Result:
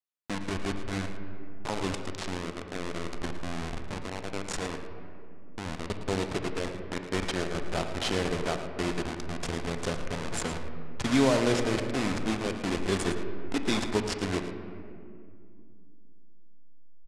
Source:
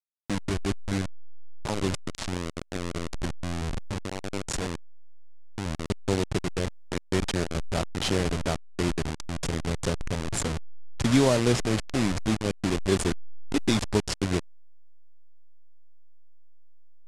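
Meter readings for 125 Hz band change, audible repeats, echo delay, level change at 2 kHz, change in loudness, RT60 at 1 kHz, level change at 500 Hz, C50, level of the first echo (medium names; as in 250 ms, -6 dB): -6.0 dB, 1, 111 ms, 0.0 dB, -3.0 dB, 2.1 s, -1.5 dB, 6.0 dB, -12.0 dB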